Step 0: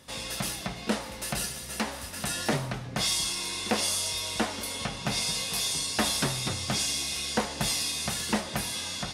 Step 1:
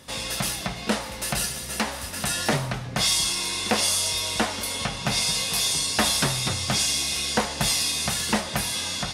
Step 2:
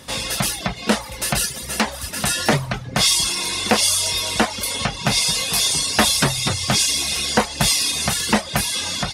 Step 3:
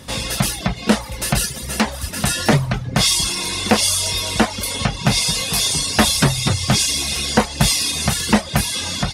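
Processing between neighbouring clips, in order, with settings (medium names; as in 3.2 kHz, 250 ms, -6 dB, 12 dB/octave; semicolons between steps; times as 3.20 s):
dynamic bell 310 Hz, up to -4 dB, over -44 dBFS, Q 1; trim +5.5 dB
reverb removal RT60 0.68 s; trim +6.5 dB
bass shelf 270 Hz +7.5 dB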